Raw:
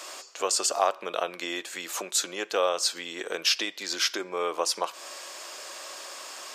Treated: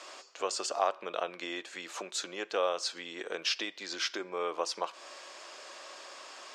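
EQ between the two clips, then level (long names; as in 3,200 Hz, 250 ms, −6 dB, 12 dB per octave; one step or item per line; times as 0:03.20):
high-frequency loss of the air 84 metres
−4.5 dB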